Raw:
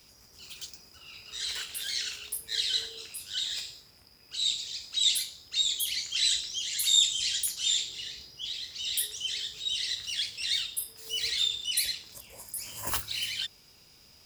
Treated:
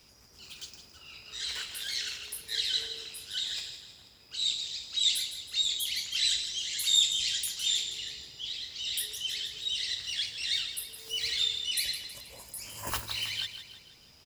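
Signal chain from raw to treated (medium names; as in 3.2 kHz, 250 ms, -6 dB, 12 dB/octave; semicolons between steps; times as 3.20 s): treble shelf 7.2 kHz -6.5 dB; on a send: feedback delay 160 ms, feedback 49%, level -11 dB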